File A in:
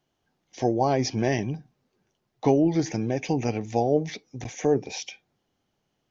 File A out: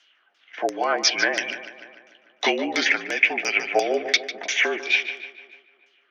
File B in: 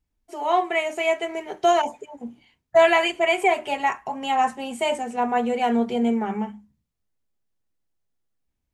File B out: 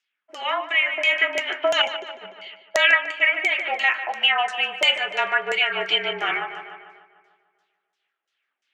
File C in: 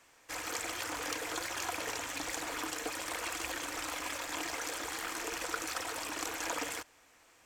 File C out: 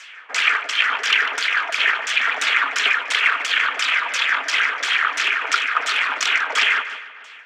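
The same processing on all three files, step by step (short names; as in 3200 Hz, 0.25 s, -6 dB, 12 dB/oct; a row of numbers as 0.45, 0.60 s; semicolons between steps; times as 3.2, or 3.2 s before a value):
band shelf 2100 Hz +12.5 dB; compressor 3:1, threshold -19 dBFS; HPF 350 Hz 24 dB/oct; LFO low-pass saw down 2.9 Hz 620–6300 Hz; frequency shift -43 Hz; tilt +3 dB/oct; on a send: darkening echo 0.148 s, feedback 58%, low-pass 4500 Hz, level -11.5 dB; on the sum: vocal rider within 4 dB 0.5 s; noise-modulated level, depth 55%; normalise peaks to -2 dBFS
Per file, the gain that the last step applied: +4.5, -0.5, +7.0 dB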